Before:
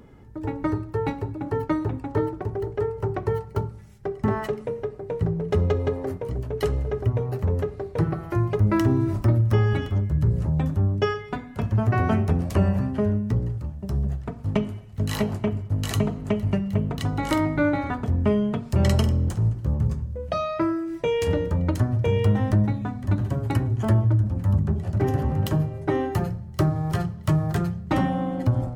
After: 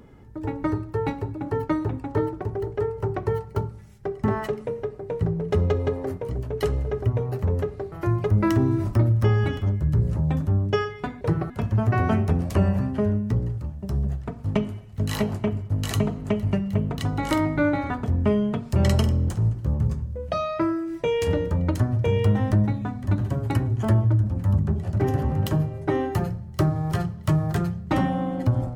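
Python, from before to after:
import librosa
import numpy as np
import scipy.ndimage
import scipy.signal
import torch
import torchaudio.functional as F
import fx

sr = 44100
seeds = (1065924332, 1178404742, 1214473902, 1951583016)

y = fx.edit(x, sr, fx.move(start_s=7.92, length_s=0.29, to_s=11.5), tone=tone)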